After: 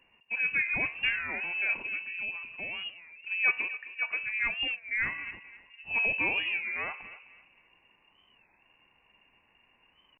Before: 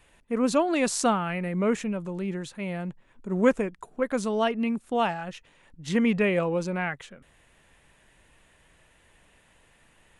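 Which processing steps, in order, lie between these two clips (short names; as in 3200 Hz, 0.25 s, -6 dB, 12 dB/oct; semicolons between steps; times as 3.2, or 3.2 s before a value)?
notch 1500 Hz, Q 7.4; de-hum 71.91 Hz, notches 33; tape echo 0.259 s, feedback 39%, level -12 dB, low-pass 1300 Hz; inverted band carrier 2800 Hz; record warp 33 1/3 rpm, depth 160 cents; gain -5.5 dB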